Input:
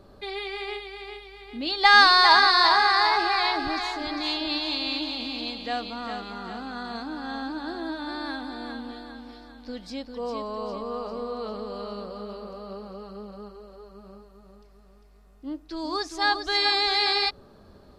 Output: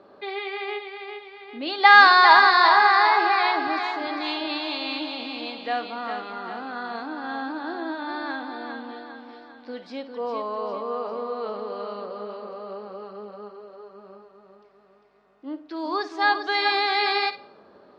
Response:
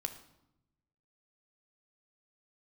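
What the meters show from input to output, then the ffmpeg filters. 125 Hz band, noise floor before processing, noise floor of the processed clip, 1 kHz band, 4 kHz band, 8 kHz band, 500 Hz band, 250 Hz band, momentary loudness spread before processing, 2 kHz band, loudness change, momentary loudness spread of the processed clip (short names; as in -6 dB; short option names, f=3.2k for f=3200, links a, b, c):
n/a, -53 dBFS, -54 dBFS, +4.0 dB, -3.5 dB, under -10 dB, +3.0 dB, 0.0 dB, 23 LU, +3.5 dB, +2.0 dB, 23 LU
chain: -filter_complex "[0:a]highpass=330,lowpass=2.7k,asplit=2[a][b];[1:a]atrim=start_sample=2205,adelay=53[c];[b][c]afir=irnorm=-1:irlink=0,volume=-12dB[d];[a][d]amix=inputs=2:normalize=0,volume=4dB"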